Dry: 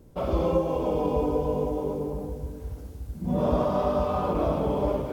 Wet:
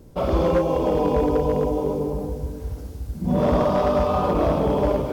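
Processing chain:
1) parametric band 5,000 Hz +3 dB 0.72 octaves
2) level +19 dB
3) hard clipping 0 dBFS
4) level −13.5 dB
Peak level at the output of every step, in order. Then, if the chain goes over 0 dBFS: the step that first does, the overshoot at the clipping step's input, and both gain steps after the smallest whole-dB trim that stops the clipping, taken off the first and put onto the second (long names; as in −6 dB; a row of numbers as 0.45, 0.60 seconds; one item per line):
−10.5, +8.5, 0.0, −13.5 dBFS
step 2, 8.5 dB
step 2 +10 dB, step 4 −4.5 dB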